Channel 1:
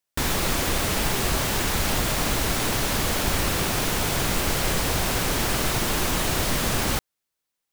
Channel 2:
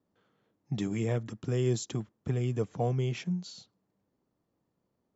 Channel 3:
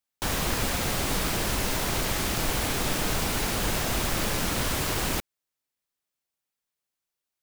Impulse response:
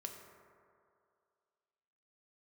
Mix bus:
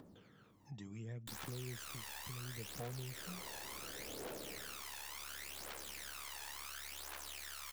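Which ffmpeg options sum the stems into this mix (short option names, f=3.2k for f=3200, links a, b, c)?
-filter_complex "[0:a]highpass=1k,aeval=exprs='val(0)*sin(2*PI*35*n/s)':c=same,aeval=exprs='(tanh(10*val(0)+0.4)-tanh(0.4))/10':c=same,adelay=1100,volume=-13dB[a];[1:a]volume=-14.5dB[b];[2:a]bandpass=f=490:t=q:w=2.1:csg=0,adelay=1450,volume=-10dB,afade=t=in:st=3.09:d=0.21:silence=0.266073,afade=t=out:st=4.49:d=0.39:silence=0.223872[c];[a][b][c]amix=inputs=3:normalize=0,acompressor=mode=upward:threshold=-47dB:ratio=2.5,aphaser=in_gain=1:out_gain=1:delay=1.2:decay=0.63:speed=0.7:type=triangular,acompressor=threshold=-47dB:ratio=2.5"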